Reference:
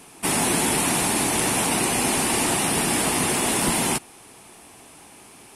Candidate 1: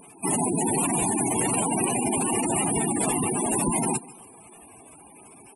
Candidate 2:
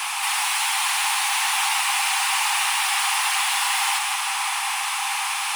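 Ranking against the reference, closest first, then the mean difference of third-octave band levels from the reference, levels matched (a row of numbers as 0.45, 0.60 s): 1, 2; 8.5, 18.5 dB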